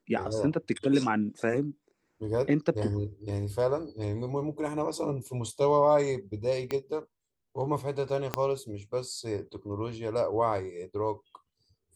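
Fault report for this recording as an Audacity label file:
6.710000	6.710000	click −17 dBFS
8.340000	8.340000	click −12 dBFS

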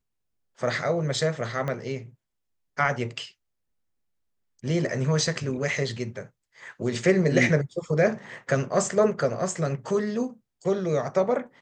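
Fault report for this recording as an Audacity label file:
1.680000	1.680000	click −18 dBFS

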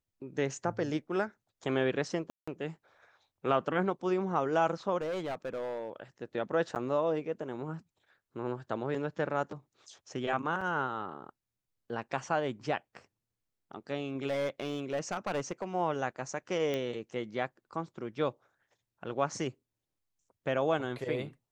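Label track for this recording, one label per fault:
2.300000	2.480000	drop-out 175 ms
5.010000	5.900000	clipping −31.5 dBFS
6.750000	6.760000	drop-out 9.1 ms
10.610000	10.610000	drop-out 4.6 ms
14.280000	15.650000	clipping −28 dBFS
16.740000	16.740000	click −20 dBFS

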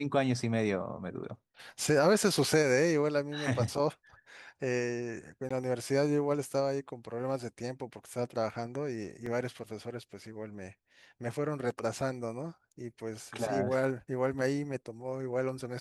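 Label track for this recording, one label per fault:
5.490000	5.500000	drop-out 15 ms
9.260000	9.260000	drop-out 4.1 ms

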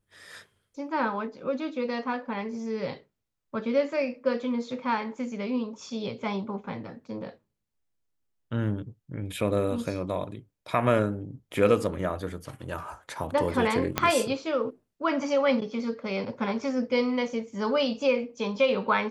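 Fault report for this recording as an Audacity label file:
13.980000	13.980000	click −7 dBFS

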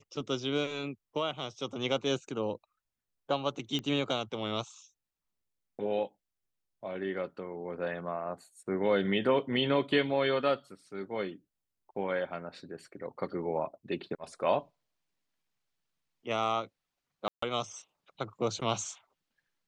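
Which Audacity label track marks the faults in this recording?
3.790000	3.790000	click −22 dBFS
17.280000	17.420000	drop-out 144 ms

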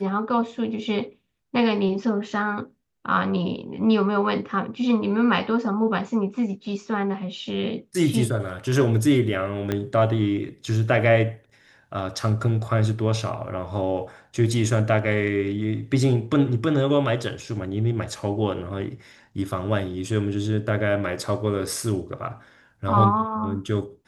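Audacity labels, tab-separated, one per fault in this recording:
9.720000	9.720000	click −12 dBFS

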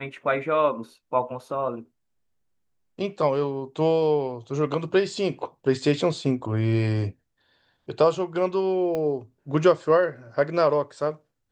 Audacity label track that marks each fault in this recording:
8.950000	8.950000	click −17 dBFS

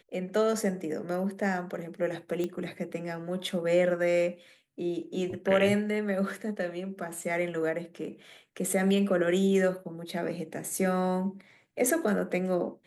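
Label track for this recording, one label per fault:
2.440000	2.440000	click −20 dBFS

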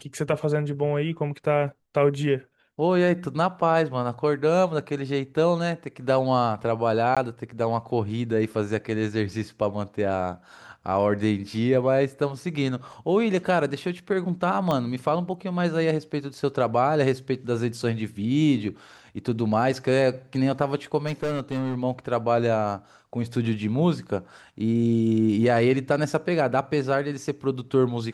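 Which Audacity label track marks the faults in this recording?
7.150000	7.170000	drop-out 16 ms
14.710000	14.710000	click −13 dBFS
21.060000	21.780000	clipping −23 dBFS

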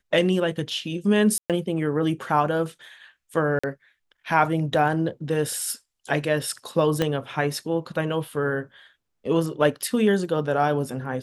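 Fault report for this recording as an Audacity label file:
1.380000	1.500000	drop-out 117 ms
3.590000	3.630000	drop-out 45 ms
7.020000	7.020000	click −9 dBFS

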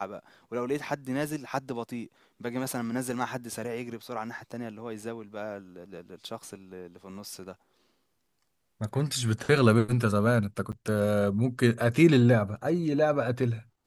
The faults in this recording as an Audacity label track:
10.720000	10.730000	drop-out 8.3 ms

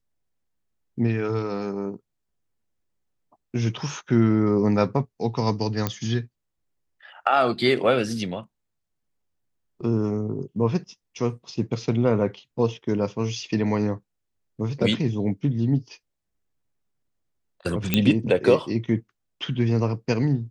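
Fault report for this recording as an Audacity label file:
5.870000	5.870000	click −9 dBFS
17.940000	17.940000	click −5 dBFS

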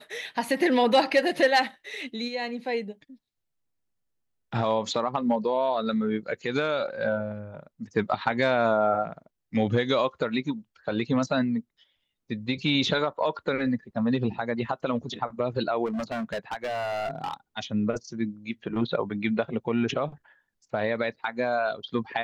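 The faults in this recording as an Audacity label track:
15.850000	17.340000	clipping −27 dBFS

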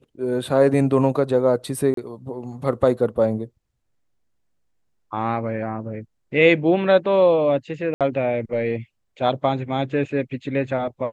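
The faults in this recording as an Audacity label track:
1.940000	1.970000	drop-out 33 ms
7.940000	8.010000	drop-out 67 ms

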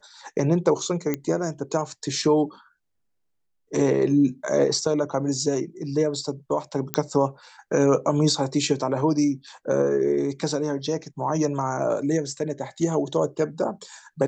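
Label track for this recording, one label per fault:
1.140000	1.140000	click −11 dBFS
6.940000	6.940000	click −6 dBFS

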